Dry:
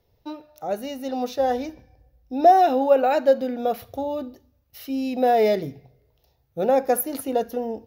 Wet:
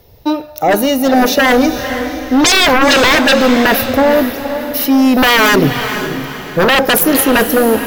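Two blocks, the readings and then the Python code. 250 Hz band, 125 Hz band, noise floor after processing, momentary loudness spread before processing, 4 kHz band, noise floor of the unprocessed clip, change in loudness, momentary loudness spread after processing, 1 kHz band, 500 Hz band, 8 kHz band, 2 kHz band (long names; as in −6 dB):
+16.5 dB, +19.0 dB, −31 dBFS, 19 LU, +26.5 dB, −67 dBFS, +11.0 dB, 11 LU, +7.5 dB, +8.0 dB, can't be measured, +25.5 dB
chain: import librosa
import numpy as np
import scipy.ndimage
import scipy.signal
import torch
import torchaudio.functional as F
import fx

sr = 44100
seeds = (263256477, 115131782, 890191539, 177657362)

p1 = fx.high_shelf(x, sr, hz=10000.0, db=8.0)
p2 = fx.fold_sine(p1, sr, drive_db=18, ceiling_db=-5.0)
p3 = p2 + fx.echo_diffused(p2, sr, ms=482, feedback_pct=42, wet_db=-9.0, dry=0)
y = F.gain(torch.from_numpy(p3), -1.5).numpy()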